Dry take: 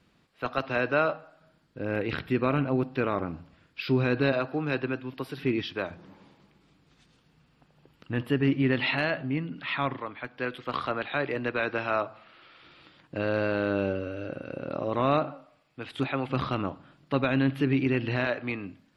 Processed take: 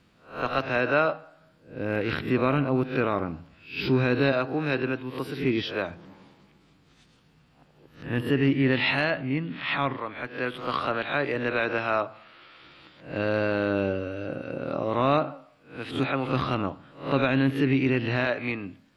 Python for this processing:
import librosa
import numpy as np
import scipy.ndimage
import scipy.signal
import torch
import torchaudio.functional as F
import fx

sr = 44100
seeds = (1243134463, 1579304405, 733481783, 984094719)

y = fx.spec_swells(x, sr, rise_s=0.39)
y = y * 10.0 ** (1.5 / 20.0)